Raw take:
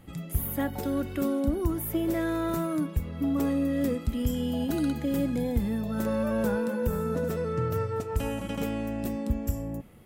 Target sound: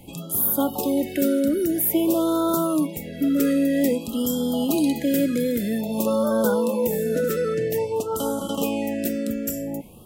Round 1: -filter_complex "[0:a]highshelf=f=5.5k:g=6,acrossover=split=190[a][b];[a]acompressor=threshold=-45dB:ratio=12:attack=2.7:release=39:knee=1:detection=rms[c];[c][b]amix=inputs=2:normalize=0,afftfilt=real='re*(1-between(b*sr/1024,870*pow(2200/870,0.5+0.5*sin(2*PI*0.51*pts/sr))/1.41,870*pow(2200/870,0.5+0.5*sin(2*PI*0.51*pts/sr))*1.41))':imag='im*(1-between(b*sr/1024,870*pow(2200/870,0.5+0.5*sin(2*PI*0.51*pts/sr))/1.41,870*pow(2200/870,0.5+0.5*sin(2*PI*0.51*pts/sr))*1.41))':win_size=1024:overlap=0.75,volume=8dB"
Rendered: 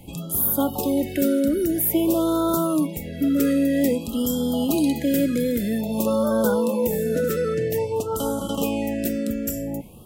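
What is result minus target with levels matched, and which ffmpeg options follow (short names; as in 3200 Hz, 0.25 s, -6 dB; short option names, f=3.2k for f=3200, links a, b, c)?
compressor: peak gain reduction -10 dB
-filter_complex "[0:a]highshelf=f=5.5k:g=6,acrossover=split=190[a][b];[a]acompressor=threshold=-56dB:ratio=12:attack=2.7:release=39:knee=1:detection=rms[c];[c][b]amix=inputs=2:normalize=0,afftfilt=real='re*(1-between(b*sr/1024,870*pow(2200/870,0.5+0.5*sin(2*PI*0.51*pts/sr))/1.41,870*pow(2200/870,0.5+0.5*sin(2*PI*0.51*pts/sr))*1.41))':imag='im*(1-between(b*sr/1024,870*pow(2200/870,0.5+0.5*sin(2*PI*0.51*pts/sr))/1.41,870*pow(2200/870,0.5+0.5*sin(2*PI*0.51*pts/sr))*1.41))':win_size=1024:overlap=0.75,volume=8dB"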